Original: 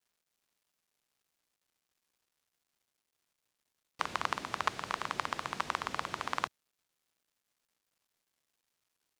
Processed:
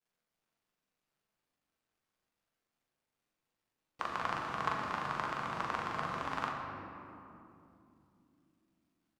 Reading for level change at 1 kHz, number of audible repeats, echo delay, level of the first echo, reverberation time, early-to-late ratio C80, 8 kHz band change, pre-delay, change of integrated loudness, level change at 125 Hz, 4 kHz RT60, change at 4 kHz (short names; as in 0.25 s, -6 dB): 0.0 dB, 1, 41 ms, -3.5 dB, 2.9 s, 2.5 dB, -8.5 dB, 4 ms, -1.0 dB, +4.5 dB, 1.4 s, -5.5 dB